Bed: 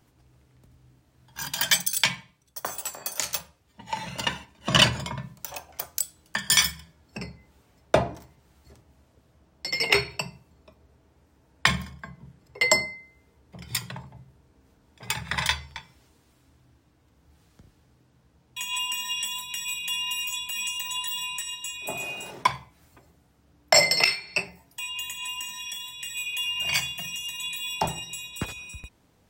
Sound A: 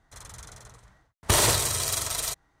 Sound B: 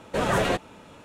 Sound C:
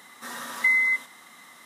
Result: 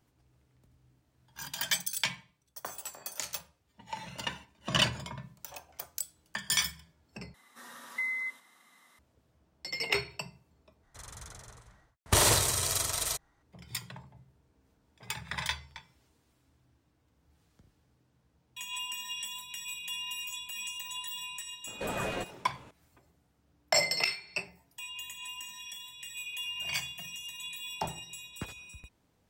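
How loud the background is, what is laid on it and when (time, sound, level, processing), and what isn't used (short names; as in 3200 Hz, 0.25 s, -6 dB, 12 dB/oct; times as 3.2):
bed -8.5 dB
7.34 replace with C -12.5 dB
10.83 replace with A -2.5 dB
21.67 add B -11.5 dB + three-band squash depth 40%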